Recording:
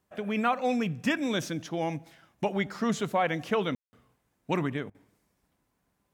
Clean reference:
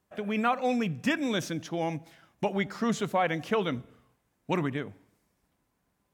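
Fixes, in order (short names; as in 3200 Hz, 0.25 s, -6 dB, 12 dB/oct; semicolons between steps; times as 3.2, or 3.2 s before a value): room tone fill 3.75–3.93; interpolate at 4.9, 45 ms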